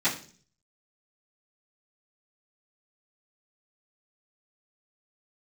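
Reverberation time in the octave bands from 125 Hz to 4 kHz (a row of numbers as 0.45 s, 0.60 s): 0.75 s, 0.60 s, 0.50 s, 0.40 s, 0.40 s, 0.50 s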